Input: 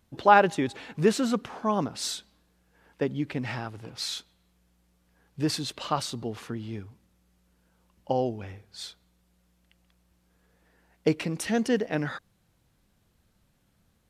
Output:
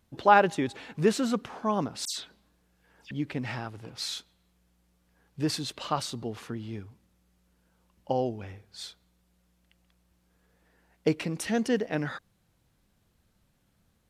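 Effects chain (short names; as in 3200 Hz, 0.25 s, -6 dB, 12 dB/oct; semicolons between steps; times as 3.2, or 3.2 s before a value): 2.05–3.11 dispersion lows, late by 0.125 s, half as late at 2800 Hz; gain -1.5 dB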